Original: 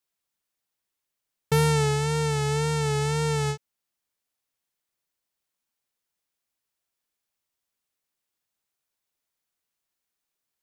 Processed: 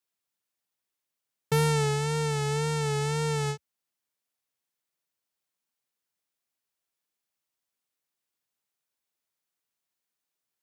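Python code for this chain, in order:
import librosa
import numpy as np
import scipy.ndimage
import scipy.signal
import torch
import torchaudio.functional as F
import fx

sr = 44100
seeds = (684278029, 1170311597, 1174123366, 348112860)

y = scipy.signal.sosfilt(scipy.signal.butter(2, 54.0, 'highpass', fs=sr, output='sos'), x)
y = fx.peak_eq(y, sr, hz=72.0, db=-7.0, octaves=0.6)
y = y * librosa.db_to_amplitude(-2.5)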